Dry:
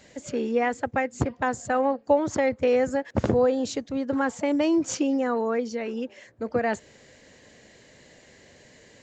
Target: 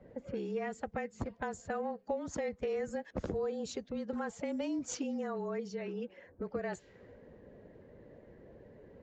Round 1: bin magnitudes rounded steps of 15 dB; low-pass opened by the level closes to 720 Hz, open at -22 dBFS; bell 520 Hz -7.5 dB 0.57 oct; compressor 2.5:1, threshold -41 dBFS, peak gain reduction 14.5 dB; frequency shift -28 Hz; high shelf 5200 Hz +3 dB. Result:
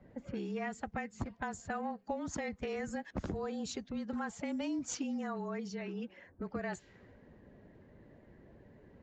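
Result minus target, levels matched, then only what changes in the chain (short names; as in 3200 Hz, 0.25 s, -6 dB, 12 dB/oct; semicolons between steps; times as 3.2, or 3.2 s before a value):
500 Hz band -4.0 dB
change: bell 520 Hz +2 dB 0.57 oct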